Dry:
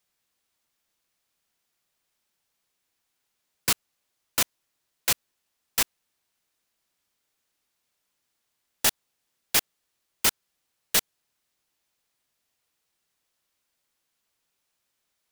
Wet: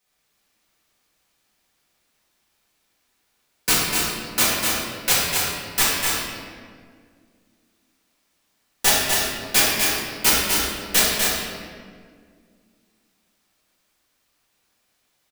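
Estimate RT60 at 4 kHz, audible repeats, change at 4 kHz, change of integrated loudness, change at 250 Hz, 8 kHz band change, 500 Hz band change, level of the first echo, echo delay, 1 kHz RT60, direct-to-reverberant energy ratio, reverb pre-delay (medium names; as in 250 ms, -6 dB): 1.2 s, 1, +9.5 dB, +6.5 dB, +13.0 dB, +8.0 dB, +12.0 dB, -4.5 dB, 248 ms, 1.7 s, -10.5 dB, 4 ms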